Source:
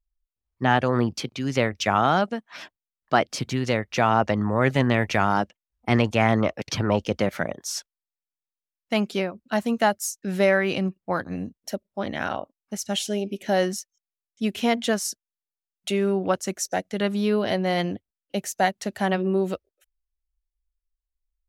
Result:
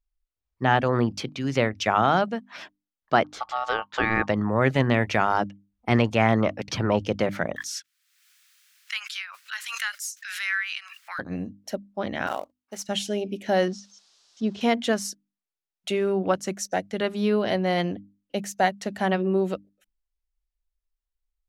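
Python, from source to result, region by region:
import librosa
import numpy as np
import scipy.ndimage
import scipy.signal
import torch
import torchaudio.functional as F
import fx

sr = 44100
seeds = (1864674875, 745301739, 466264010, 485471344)

y = fx.chain(x, sr, fx.high_shelf(hz=5100.0, db=-11.0),
    fx.ring_mod(carrier_hz=1000.0), at=(3.24, 4.28))
y = fx.chain(y, sr, fx.steep_highpass(hz=1400.0, slope=36),
    fx.pre_swell(db_per_s=43.0), at=(7.56, 11.19))
y = fx.chain(y, sr, fx.highpass(hz=350.0, slope=12),
    fx.quant_float(bits=2), at=(12.27, 12.89))
y = fx.chain(y, sr, fx.crossing_spikes(level_db=-30.0),
    fx.lowpass(hz=5100.0, slope=24),
    fx.peak_eq(hz=2200.0, db=-14.0, octaves=1.2), at=(13.68, 14.61))
y = fx.high_shelf(y, sr, hz=7100.0, db=-8.0)
y = fx.hum_notches(y, sr, base_hz=50, count=6)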